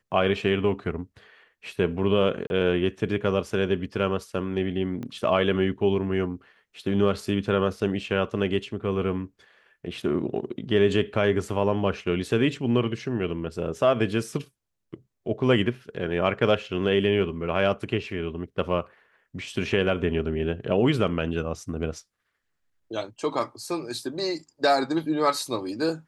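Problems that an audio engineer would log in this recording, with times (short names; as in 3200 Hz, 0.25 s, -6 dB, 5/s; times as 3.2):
2.47–2.5 gap 31 ms
5.03 pop -23 dBFS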